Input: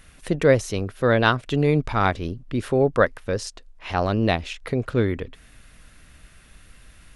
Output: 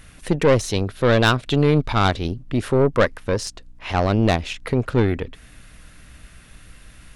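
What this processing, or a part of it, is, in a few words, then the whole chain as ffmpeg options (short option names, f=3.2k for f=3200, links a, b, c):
valve amplifier with mains hum: -filter_complex "[0:a]aeval=exprs='(tanh(5.62*val(0)+0.45)-tanh(0.45))/5.62':c=same,aeval=exprs='val(0)+0.00126*(sin(2*PI*60*n/s)+sin(2*PI*2*60*n/s)/2+sin(2*PI*3*60*n/s)/3+sin(2*PI*4*60*n/s)/4+sin(2*PI*5*60*n/s)/5)':c=same,asettb=1/sr,asplit=3[a][b][c];[a]atrim=end=0.604[d];[b]atrim=start=0.6:end=2.28,asetpts=PTS-STARTPTS,afade=t=in:d=0.004:c=qsin,afade=t=out:st=1.676:d=0.004:c=qsin,equalizer=f=3.9k:t=o:w=0.52:g=6[e];[c]atrim=start=2.276[f];[d][e]acrossfade=d=0.004:c1=hsin:c2=qsin[g];[g][f]acrossfade=d=0.004:c1=qsin:c2=hsin,volume=5.5dB"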